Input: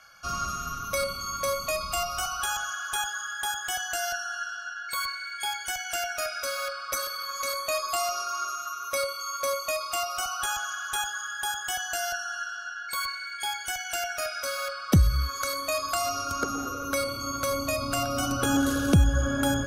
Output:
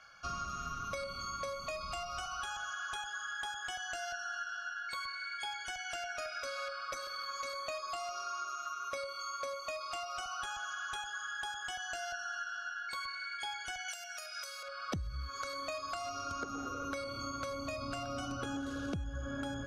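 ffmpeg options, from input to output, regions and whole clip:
-filter_complex "[0:a]asettb=1/sr,asplit=3[s0][s1][s2];[s0]atrim=end=13.884[s3];[s1]atrim=start=13.88:end=14.63,asetpts=PTS-STARTPTS,afade=t=in:d=0.004:c=qsin,afade=t=out:st=0.746:d=0.004:c=qsin,highpass=540,aemphasis=mode=production:type=riaa[s4];[s2]atrim=start=14.626[s5];[s3][s4]acrossfade=d=0.004:c1=hsin:c2=qsin[s6];[s6][s5]acrossfade=d=0.004:c1=qsin:c2=hsin,acompressor=threshold=0.0251:ratio=12,lowpass=5200,volume=0.668"

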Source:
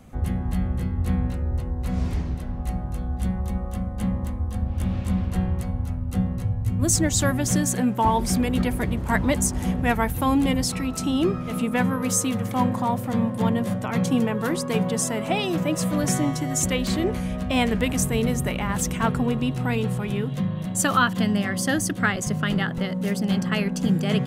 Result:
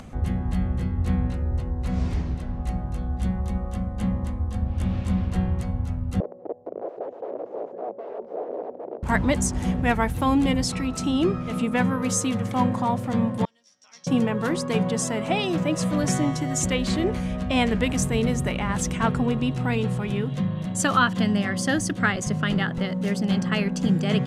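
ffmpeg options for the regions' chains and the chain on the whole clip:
-filter_complex "[0:a]asettb=1/sr,asplit=3[s0][s1][s2];[s0]atrim=end=6.204[s3];[s1]atrim=start=6.2:end=9.03,asetpts=PTS-STARTPTS,afade=t=in:d=0.004:c=qsin,afade=t=out:st=2.826:d=0.004:c=qsin,aeval=exprs='(mod(8.41*val(0)+1,2)-1)/8.41':c=same,asuperpass=centerf=510:order=4:qfactor=1.8[s4];[s2]atrim=start=9.026[s5];[s3][s4]acrossfade=d=0.004:c1=hsin:c2=qsin[s6];[s6][s5]acrossfade=d=0.004:c1=qsin:c2=hsin,asettb=1/sr,asplit=3[s7][s8][s9];[s7]atrim=end=13.454[s10];[s8]atrim=start=13.45:end=14.07,asetpts=PTS-STARTPTS,afade=t=in:d=0.004:c=qsin,afade=t=out:st=0.616:d=0.004:c=qsin,bandpass=f=5600:t=q:w=14,asplit=2[s11][s12];[s12]adelay=13,volume=0.708[s13];[s11][s13]amix=inputs=2:normalize=0,atrim=end_sample=27342[s14];[s9]atrim=start=14.066[s15];[s10][s14]acrossfade=d=0.004:c1=hsin:c2=qsin[s16];[s16][s15]acrossfade=d=0.004:c1=qsin:c2=hsin,lowpass=8000,acompressor=mode=upward:threshold=0.0178:ratio=2.5"

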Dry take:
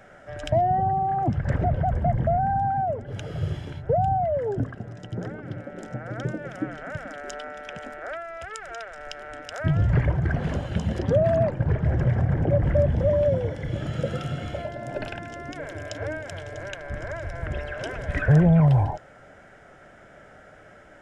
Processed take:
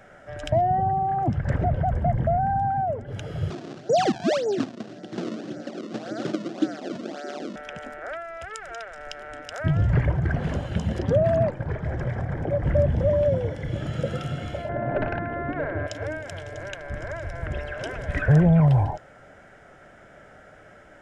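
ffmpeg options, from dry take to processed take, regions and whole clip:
-filter_complex "[0:a]asettb=1/sr,asplit=3[s0][s1][s2];[s0]atrim=end=3.504[s3];[s1]atrim=start=3.5:end=7.56,asetpts=PTS-STARTPTS,afade=t=in:d=0.004:c=qsin,afade=t=out:st=4.056:d=0.004:c=qsin,acrusher=samples=31:mix=1:aa=0.000001:lfo=1:lforange=49.6:lforate=1.8,highpass=f=180:w=0.5412,highpass=f=180:w=1.3066,equalizer=f=230:t=q:w=4:g=6,equalizer=f=340:t=q:w=4:g=9,equalizer=f=680:t=q:w=4:g=5,equalizer=f=960:t=q:w=4:g=-6,equalizer=f=2200:t=q:w=4:g=-5,lowpass=f=6400:w=0.5412,lowpass=f=6400:w=1.3066[s4];[s2]atrim=start=7.556[s5];[s3][s4]acrossfade=d=0.004:c1=hsin:c2=qsin[s6];[s6][s5]acrossfade=d=0.004:c1=qsin:c2=hsin,asettb=1/sr,asplit=3[s7][s8][s9];[s7]atrim=end=11.514[s10];[s8]atrim=start=11.51:end=12.65,asetpts=PTS-STARTPTS,afade=t=in:d=0.004:c=qsin,afade=t=out:st=1.136:d=0.004:c=qsin,equalizer=f=110:w=0.36:g=-7,bandreject=f=2800:w=12[s11];[s9]atrim=start=12.646[s12];[s10][s11]acrossfade=d=0.004:c1=hsin:c2=qsin[s13];[s13][s12]acrossfade=d=0.004:c1=qsin:c2=hsin,asettb=1/sr,asplit=3[s14][s15][s16];[s14]atrim=end=14.694[s17];[s15]atrim=start=14.69:end=15.87,asetpts=PTS-STARTPTS,afade=t=in:d=0.004:c=qsin,afade=t=out:st=1.176:d=0.004:c=qsin,lowpass=f=1900:w=0.5412,lowpass=f=1900:w=1.3066,aeval=exprs='0.126*sin(PI/2*1.58*val(0)/0.126)':c=same[s18];[s16]atrim=start=15.866[s19];[s17][s18]acrossfade=d=0.004:c1=hsin:c2=qsin[s20];[s20][s19]acrossfade=d=0.004:c1=qsin:c2=hsin"

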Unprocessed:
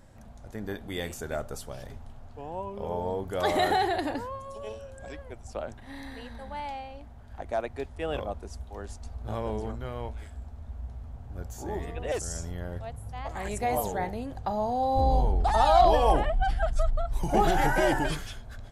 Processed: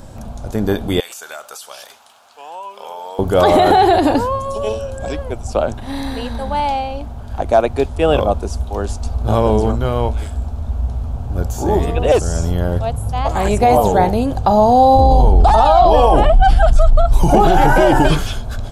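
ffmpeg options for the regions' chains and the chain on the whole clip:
-filter_complex "[0:a]asettb=1/sr,asplit=3[s0][s1][s2];[s0]atrim=end=1.004[s3];[s1]atrim=start=1:end=3.19,asetpts=PTS-STARTPTS,afade=t=in:d=0.004:c=qsin,afade=t=out:st=2.186:d=0.004:c=qsin,highpass=1400,acompressor=threshold=0.00631:ratio=3:attack=3.2:release=140:knee=1:detection=peak[s4];[s2]atrim=start=3.186[s5];[s3][s4]acrossfade=d=0.004:c1=hsin:c2=qsin[s6];[s6][s5]acrossfade=d=0.004:c1=qsin:c2=hsin,acrossover=split=3400[s7][s8];[s8]acompressor=threshold=0.00398:ratio=4:attack=1:release=60[s9];[s7][s9]amix=inputs=2:normalize=0,equalizer=f=1900:t=o:w=0.46:g=-10.5,alimiter=level_in=10:limit=0.891:release=50:level=0:latency=1,volume=0.841"

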